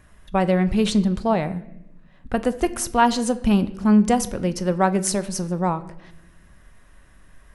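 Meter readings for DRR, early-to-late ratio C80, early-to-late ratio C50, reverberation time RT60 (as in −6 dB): 11.5 dB, 18.0 dB, 16.0 dB, 0.90 s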